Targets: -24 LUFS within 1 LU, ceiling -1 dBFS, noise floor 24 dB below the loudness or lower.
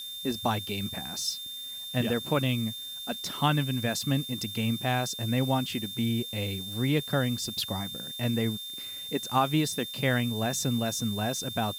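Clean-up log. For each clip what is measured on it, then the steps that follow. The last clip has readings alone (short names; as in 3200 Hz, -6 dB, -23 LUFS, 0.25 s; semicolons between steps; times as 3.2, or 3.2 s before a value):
steady tone 3600 Hz; tone level -37 dBFS; noise floor -39 dBFS; noise floor target -54 dBFS; loudness -29.5 LUFS; peak -11.5 dBFS; loudness target -24.0 LUFS
-> notch 3600 Hz, Q 30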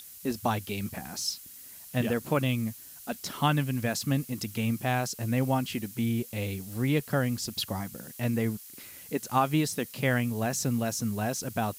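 steady tone none; noise floor -48 dBFS; noise floor target -54 dBFS
-> denoiser 6 dB, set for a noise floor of -48 dBFS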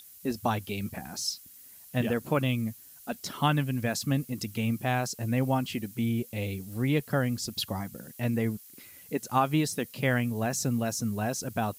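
noise floor -51 dBFS; noise floor target -54 dBFS
-> denoiser 6 dB, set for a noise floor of -51 dBFS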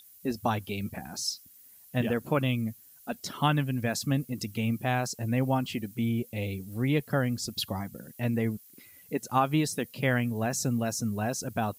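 noise floor -55 dBFS; loudness -30.0 LUFS; peak -12.0 dBFS; loudness target -24.0 LUFS
-> gain +6 dB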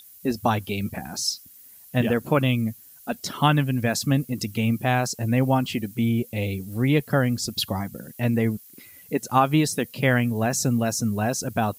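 loudness -24.0 LUFS; peak -6.0 dBFS; noise floor -49 dBFS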